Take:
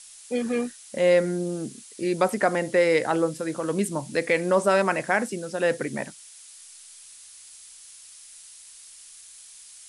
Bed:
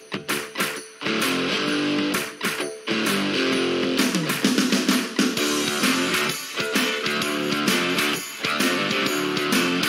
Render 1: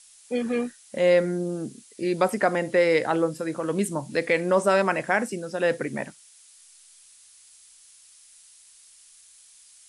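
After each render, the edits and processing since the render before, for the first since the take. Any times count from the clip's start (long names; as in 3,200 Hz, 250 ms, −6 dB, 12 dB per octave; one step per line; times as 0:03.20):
noise reduction from a noise print 6 dB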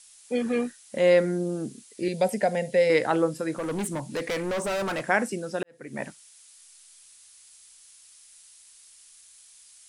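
0:02.08–0:02.90: phaser with its sweep stopped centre 320 Hz, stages 6
0:03.54–0:05.07: gain into a clipping stage and back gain 26 dB
0:05.63–0:06.05: fade in quadratic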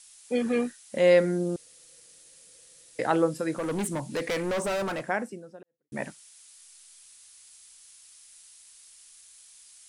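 0:01.56–0:02.99: fill with room tone
0:04.56–0:05.92: fade out and dull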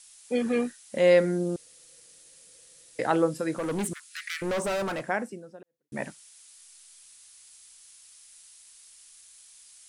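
0:03.93–0:04.42: Butterworth high-pass 1,300 Hz 72 dB per octave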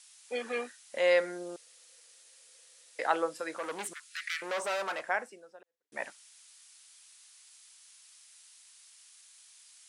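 high-pass filter 710 Hz 12 dB per octave
high-shelf EQ 9,200 Hz −11 dB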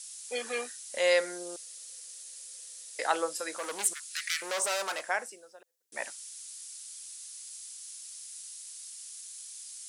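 bass and treble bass −7 dB, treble +14 dB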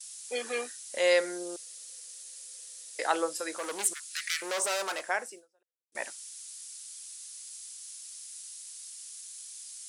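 noise gate with hold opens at −38 dBFS
parametric band 350 Hz +4.5 dB 0.61 octaves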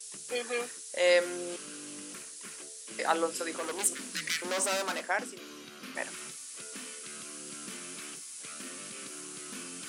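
mix in bed −24.5 dB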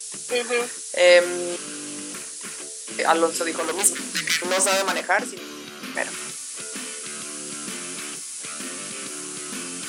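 level +10 dB
brickwall limiter −3 dBFS, peak gain reduction 1.5 dB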